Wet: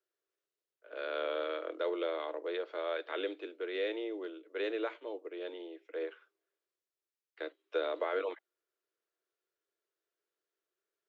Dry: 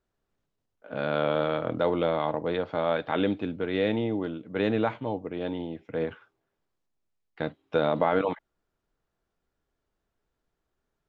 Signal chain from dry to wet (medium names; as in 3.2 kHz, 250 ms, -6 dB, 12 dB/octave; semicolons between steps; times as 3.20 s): steep high-pass 330 Hz 72 dB/octave; peaking EQ 840 Hz -10 dB 0.78 oct; band-stop 780 Hz, Q 20; trim -5.5 dB